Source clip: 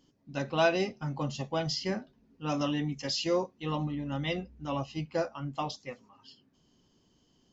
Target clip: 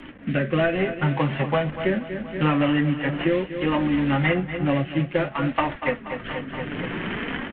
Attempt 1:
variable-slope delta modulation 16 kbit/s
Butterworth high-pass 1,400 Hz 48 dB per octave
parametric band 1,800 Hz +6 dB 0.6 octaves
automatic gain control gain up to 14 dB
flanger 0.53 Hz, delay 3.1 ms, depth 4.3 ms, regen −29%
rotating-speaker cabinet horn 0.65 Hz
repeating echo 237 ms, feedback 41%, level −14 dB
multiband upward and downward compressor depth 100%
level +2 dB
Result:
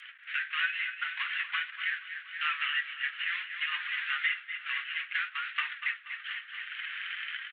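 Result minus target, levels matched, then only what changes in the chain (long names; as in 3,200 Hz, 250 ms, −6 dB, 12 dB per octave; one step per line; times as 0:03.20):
1,000 Hz band −4.0 dB
remove: Butterworth high-pass 1,400 Hz 48 dB per octave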